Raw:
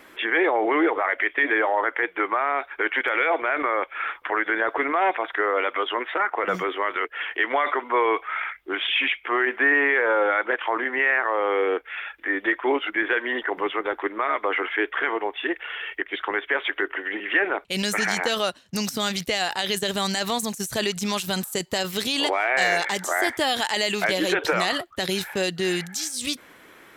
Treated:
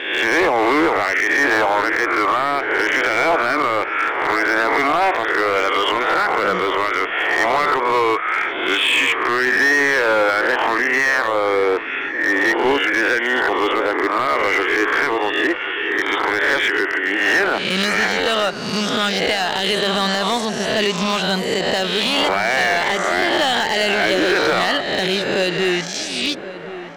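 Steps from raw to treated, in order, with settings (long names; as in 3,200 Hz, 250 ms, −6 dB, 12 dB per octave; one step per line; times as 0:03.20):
peak hold with a rise ahead of every peak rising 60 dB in 1.00 s
low-pass filter 4,100 Hz 12 dB per octave
in parallel at +3 dB: brickwall limiter −13 dBFS, peak gain reduction 7.5 dB
on the sum: low-shelf EQ 110 Hz −9.5 dB
hard clipping −10.5 dBFS, distortion −14 dB
feedback echo with a low-pass in the loop 1,078 ms, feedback 60%, low-pass 1,600 Hz, level −13 dB
level −1.5 dB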